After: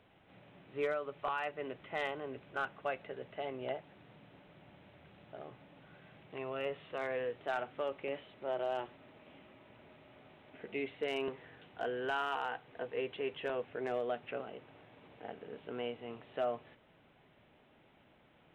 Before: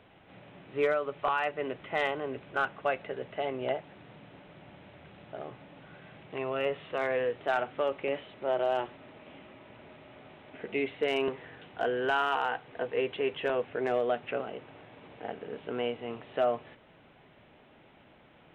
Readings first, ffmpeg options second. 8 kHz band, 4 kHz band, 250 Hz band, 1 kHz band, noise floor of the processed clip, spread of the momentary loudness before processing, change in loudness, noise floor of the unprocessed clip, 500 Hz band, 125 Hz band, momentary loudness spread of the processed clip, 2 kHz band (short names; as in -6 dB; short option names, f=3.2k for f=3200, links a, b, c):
n/a, -7.0 dB, -7.0 dB, -7.5 dB, -66 dBFS, 22 LU, -7.5 dB, -59 dBFS, -7.5 dB, -6.5 dB, 22 LU, -7.5 dB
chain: -af "bass=f=250:g=1,treble=f=4k:g=3,volume=-7.5dB"